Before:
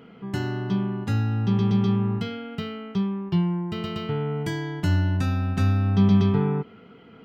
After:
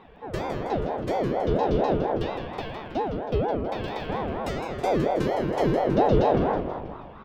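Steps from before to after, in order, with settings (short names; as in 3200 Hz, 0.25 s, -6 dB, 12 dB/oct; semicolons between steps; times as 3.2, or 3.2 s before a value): frequency-shifting echo 0.161 s, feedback 55%, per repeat -150 Hz, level -7 dB; ring modulator with a swept carrier 450 Hz, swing 50%, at 4.3 Hz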